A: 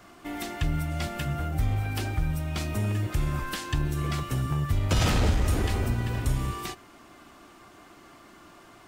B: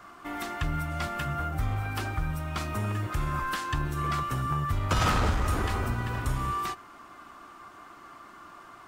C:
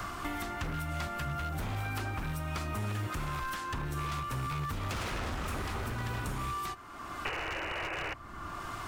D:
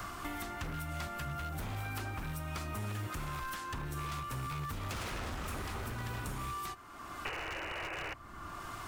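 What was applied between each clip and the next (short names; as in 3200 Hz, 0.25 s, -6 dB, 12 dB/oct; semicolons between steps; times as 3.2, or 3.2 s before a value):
bell 1200 Hz +11.5 dB 1 oct; gain -3.5 dB
painted sound noise, 7.25–8.14, 300–3000 Hz -31 dBFS; wavefolder -25 dBFS; three-band squash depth 100%; gain -5 dB
high shelf 7600 Hz +5.5 dB; gain -4 dB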